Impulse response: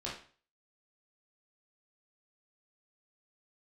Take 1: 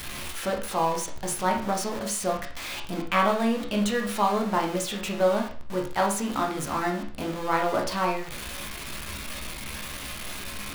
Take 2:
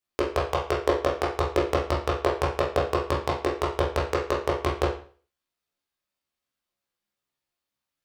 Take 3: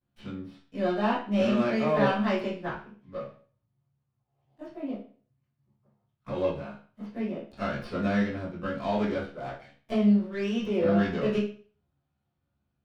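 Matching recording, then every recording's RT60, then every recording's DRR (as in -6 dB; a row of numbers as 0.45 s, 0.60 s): 2; 0.40 s, 0.40 s, 0.40 s; 0.5 dB, -6.0 dB, -15.5 dB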